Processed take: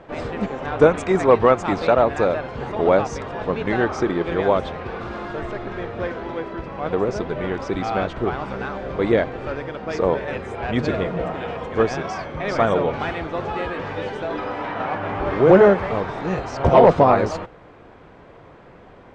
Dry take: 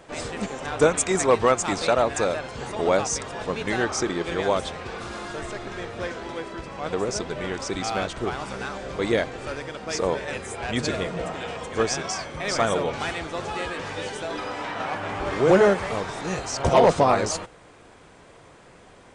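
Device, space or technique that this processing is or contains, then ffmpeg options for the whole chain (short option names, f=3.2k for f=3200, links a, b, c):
phone in a pocket: -af "lowpass=4k,highshelf=f=2.4k:g=-11.5,volume=5.5dB"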